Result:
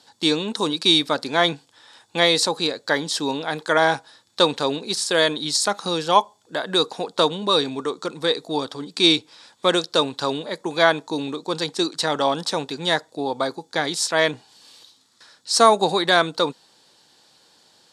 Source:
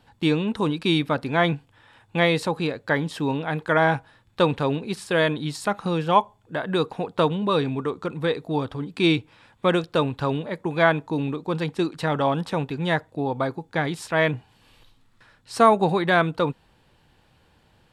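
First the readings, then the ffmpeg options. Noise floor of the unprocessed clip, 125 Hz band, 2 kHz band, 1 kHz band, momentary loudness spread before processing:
-61 dBFS, -8.5 dB, +1.5 dB, +2.0 dB, 8 LU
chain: -af "aexciter=amount=6.8:drive=7.2:freq=3900,highpass=280,lowpass=5700,volume=1.26"

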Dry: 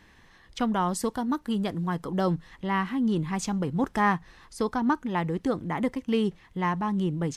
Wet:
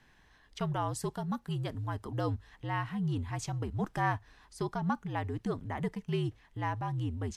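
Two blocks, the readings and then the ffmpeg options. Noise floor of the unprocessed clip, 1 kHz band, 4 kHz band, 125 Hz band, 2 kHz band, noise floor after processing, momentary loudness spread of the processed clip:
-57 dBFS, -7.0 dB, -7.0 dB, -1.0 dB, -7.0 dB, -64 dBFS, 5 LU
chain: -af "afreqshift=-66,volume=0.447"

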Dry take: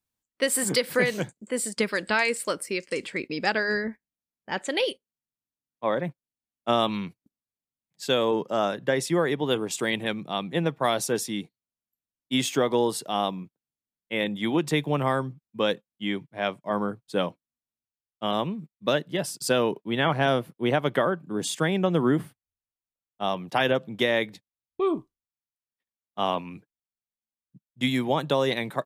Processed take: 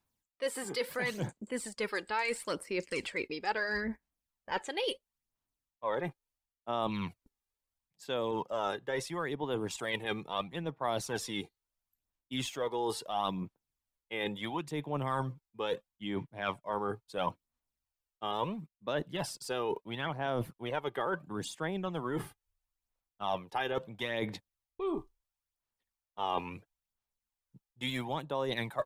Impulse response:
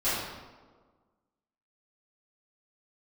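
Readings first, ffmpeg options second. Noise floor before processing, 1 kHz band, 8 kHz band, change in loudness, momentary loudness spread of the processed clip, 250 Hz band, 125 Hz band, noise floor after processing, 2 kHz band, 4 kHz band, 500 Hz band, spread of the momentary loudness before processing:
under -85 dBFS, -6.5 dB, -12.5 dB, -9.5 dB, 6 LU, -11.0 dB, -9.0 dB, under -85 dBFS, -9.0 dB, -9.5 dB, -9.5 dB, 9 LU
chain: -filter_complex "[0:a]aphaser=in_gain=1:out_gain=1:delay=2.5:decay=0.5:speed=0.74:type=sinusoidal,areverse,acompressor=threshold=0.0282:ratio=10,areverse,asubboost=boost=5.5:cutoff=64,acrossover=split=5200[s0][s1];[s1]acompressor=threshold=0.00708:ratio=4:attack=1:release=60[s2];[s0][s2]amix=inputs=2:normalize=0,equalizer=f=930:t=o:w=0.7:g=5.5"

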